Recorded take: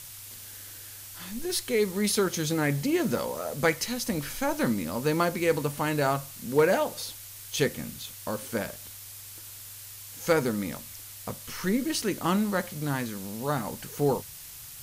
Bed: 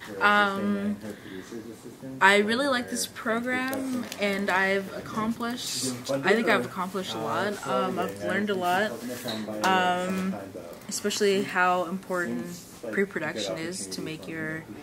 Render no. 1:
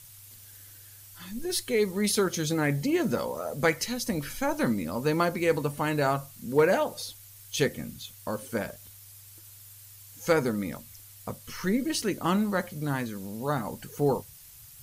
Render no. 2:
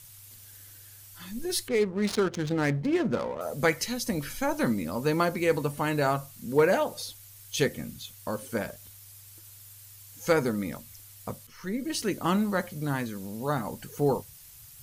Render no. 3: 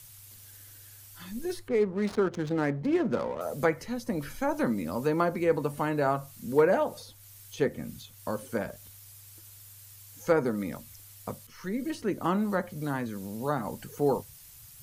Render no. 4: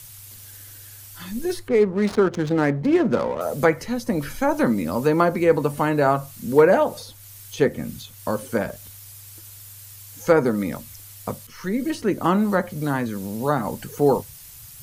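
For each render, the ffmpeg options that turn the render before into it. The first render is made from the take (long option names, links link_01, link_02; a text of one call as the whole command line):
ffmpeg -i in.wav -af "afftdn=noise_reduction=9:noise_floor=-44" out.wav
ffmpeg -i in.wav -filter_complex "[0:a]asettb=1/sr,asplit=3[link_01][link_02][link_03];[link_01]atrim=end=1.684[link_04];[link_02]atrim=start=1.68:end=3.41,asetpts=PTS-STARTPTS,afade=type=in:duration=0.004:curve=qsin,afade=type=out:start_time=1.726:duration=0.004:curve=qsin,adynamicsmooth=sensitivity=5.5:basefreq=590[link_05];[link_03]atrim=start=3.406[link_06];[link_04][link_05]acrossfade=duration=0.004:curve1=hsin:curve2=qsin[link_07];[link_07][link_06]acrossfade=duration=0.004:curve1=qsin:curve2=hsin,asplit=2[link_08][link_09];[link_08]atrim=end=11.47,asetpts=PTS-STARTPTS,afade=type=out:start_time=11.466:duration=0.004:curve=hsin:silence=0.177828[link_10];[link_09]atrim=start=11.47,asetpts=PTS-STARTPTS,afade=type=in:duration=0.63:silence=0.177828[link_11];[link_10][link_11]concat=n=2:v=0:a=1" out.wav
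ffmpeg -i in.wav -filter_complex "[0:a]acrossover=split=190|1700[link_01][link_02][link_03];[link_01]alimiter=level_in=12.5dB:limit=-24dB:level=0:latency=1,volume=-12.5dB[link_04];[link_03]acompressor=threshold=-46dB:ratio=6[link_05];[link_04][link_02][link_05]amix=inputs=3:normalize=0" out.wav
ffmpeg -i in.wav -af "volume=8dB,alimiter=limit=-3dB:level=0:latency=1" out.wav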